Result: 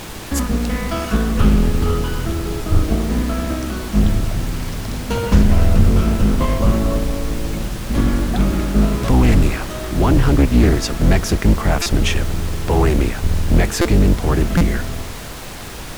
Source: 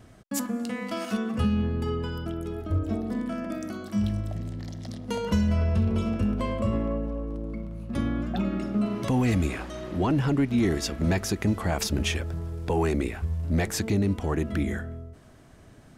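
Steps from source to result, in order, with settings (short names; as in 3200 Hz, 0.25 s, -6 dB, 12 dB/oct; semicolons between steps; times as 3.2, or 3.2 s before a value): octaver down 2 oct, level +4 dB; bell 1300 Hz +3 dB; added noise pink -38 dBFS; stuck buffer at 11.82/13.81/14.57, samples 256, times 6; Doppler distortion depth 0.42 ms; gain +7 dB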